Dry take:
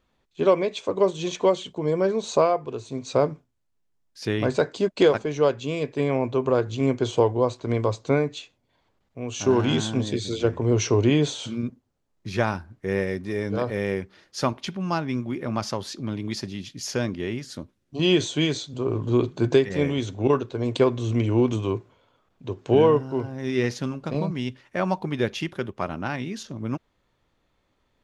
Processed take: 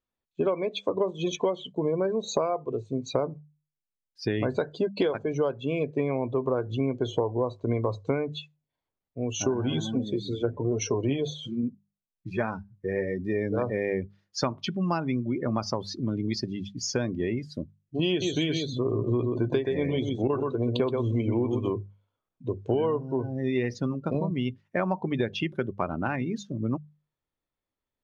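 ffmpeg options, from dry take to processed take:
-filter_complex "[0:a]asplit=3[a][b][c];[a]afade=t=out:st=9.53:d=0.02[d];[b]flanger=delay=3.7:depth=5.3:regen=39:speed=1.2:shape=triangular,afade=t=in:st=9.53:d=0.02,afade=t=out:st=13.17:d=0.02[e];[c]afade=t=in:st=13.17:d=0.02[f];[d][e][f]amix=inputs=3:normalize=0,asettb=1/sr,asplit=3[g][h][i];[g]atrim=end=18.094[j];[h]atrim=start=18.09:end=21.7,asetpts=PTS-STARTPTS,afade=t=in:d=0.004:c=qsin,afade=t=out:st=3.606:d=0.004:c=qsin,aecho=1:1:126:0.531,atrim=end_sample=159201[k];[i]atrim=start=21.696[l];[j][k]acrossfade=d=0.004:c1=hsin:c2=qsin[m];[m][l]acrossfade=d=0.004:c1=qsin:c2=hsin,afftdn=nr=23:nf=-34,bandreject=f=50:t=h:w=6,bandreject=f=100:t=h:w=6,bandreject=f=150:t=h:w=6,bandreject=f=200:t=h:w=6,acompressor=threshold=-26dB:ratio=6,volume=3dB"

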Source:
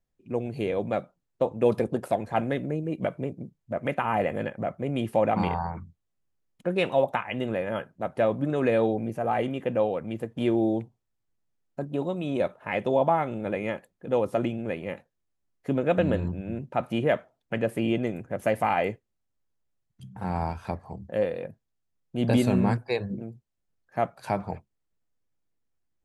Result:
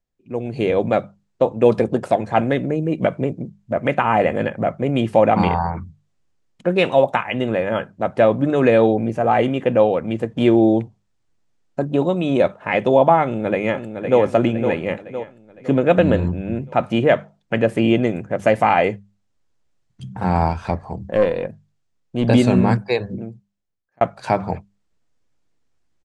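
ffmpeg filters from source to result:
-filter_complex "[0:a]asettb=1/sr,asplit=3[a][b][c];[a]atrim=end=6.844[d];[b]atrim=start=6.84:end=7.34,asetpts=PTS-STARTPTS,afade=t=in:d=0.004:c=qsin,afade=t=out:st=0.496:d=0.004:c=qsin,highshelf=f=8.1k:g=8[e];[c]atrim=start=7.336[f];[d][e]acrossfade=d=0.004:c1=hsin:c2=qsin[g];[g][f]acrossfade=d=0.004:c1=qsin:c2=hsin,asplit=2[h][i];[i]afade=t=in:st=13.23:d=0.01,afade=t=out:st=14.21:d=0.01,aecho=0:1:510|1020|1530|2040|2550|3060:0.398107|0.199054|0.0995268|0.0497634|0.0248817|0.0124408[j];[h][j]amix=inputs=2:normalize=0,asettb=1/sr,asplit=3[k][l][m];[k]atrim=end=20.484[n];[l]atrim=start=20.48:end=22.27,asetpts=PTS-STARTPTS,afade=t=in:d=0.004:c=qsin,afade=t=out:st=1.786:d=0.004:c=qsin,aeval=exprs='(tanh(7.94*val(0)+0.35)-tanh(0.35))/7.94':c=same[o];[m]atrim=start=22.266[p];[n][o]acrossfade=d=0.004:c1=hsin:c2=qsin[q];[q][p]acrossfade=d=0.004:c1=qsin:c2=hsin,asplit=2[r][s];[r]atrim=end=24.01,asetpts=PTS-STARTPTS,afade=t=out:st=22.78:d=1.23[t];[s]atrim=start=24.01,asetpts=PTS-STARTPTS,afade=t=in:d=0.004:c=hsin[u];[t][u]concat=n=2:v=0:a=1,lowpass=f=8.3k:w=0.5412,lowpass=f=8.3k:w=1.3066,bandreject=f=50:t=h:w=6,bandreject=f=100:t=h:w=6,bandreject=f=150:t=h:w=6,bandreject=f=200:t=h:w=6,dynaudnorm=f=110:g=9:m=11.5dB"

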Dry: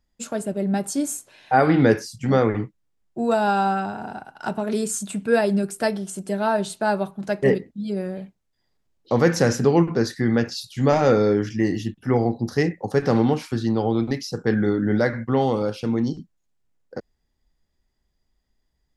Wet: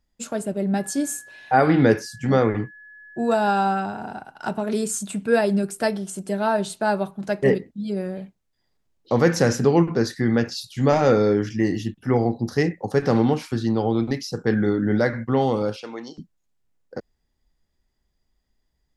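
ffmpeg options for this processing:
-filter_complex "[0:a]asettb=1/sr,asplit=3[a][b][c];[a]atrim=end=0.754[d];[b]atrim=start=0.75:end=3.58,asetpts=PTS-STARTPTS,afade=t=in:d=0.004:c=qsin,afade=t=out:st=2.826:d=0.004:c=qsin,aeval=exprs='val(0)+0.00708*sin(2*PI*1700*n/s)':c=same[e];[c]atrim=start=3.576[f];[d][e]acrossfade=d=0.004:c1=hsin:c2=qsin[g];[g][f]acrossfade=d=0.004:c1=qsin:c2=hsin,asettb=1/sr,asplit=3[h][i][j];[h]atrim=end=15.764[k];[i]atrim=start=15.76:end=16.18,asetpts=PTS-STARTPTS,afade=t=in:d=0.004:c=qsin,afade=t=out:st=0.416:d=0.004:c=qsin,highpass=600,lowpass=7.6k[l];[j]atrim=start=16.176[m];[k][l]acrossfade=d=0.004:c1=hsin:c2=qsin[n];[n][m]acrossfade=d=0.004:c1=qsin:c2=hsin"

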